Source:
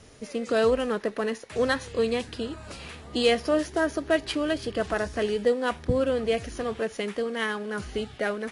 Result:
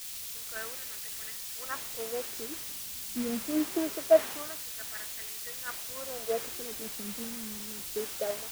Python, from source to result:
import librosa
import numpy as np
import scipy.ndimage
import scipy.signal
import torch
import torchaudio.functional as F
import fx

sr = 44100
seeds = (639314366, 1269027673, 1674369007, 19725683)

y = fx.low_shelf(x, sr, hz=390.0, db=-4.0)
y = fx.wah_lfo(y, sr, hz=0.24, low_hz=210.0, high_hz=2100.0, q=3.4)
y = fx.tilt_eq(y, sr, slope=-2.0)
y = fx.quant_dither(y, sr, seeds[0], bits=6, dither='triangular')
y = fx.band_widen(y, sr, depth_pct=100)
y = y * librosa.db_to_amplitude(-3.5)